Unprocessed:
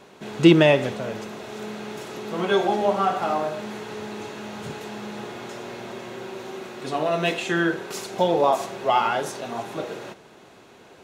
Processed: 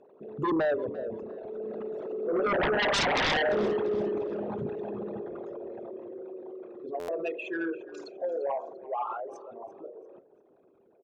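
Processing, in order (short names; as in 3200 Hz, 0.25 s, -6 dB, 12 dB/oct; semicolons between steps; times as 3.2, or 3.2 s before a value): formant sharpening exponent 3; Doppler pass-by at 3.43, 7 m/s, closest 2.9 m; LPF 7300 Hz; sine folder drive 15 dB, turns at -15 dBFS; on a send: frequency-shifting echo 0.344 s, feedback 35%, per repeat -35 Hz, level -19 dB; on the sum: stuck buffer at 6.99, samples 512, times 7; gain -8 dB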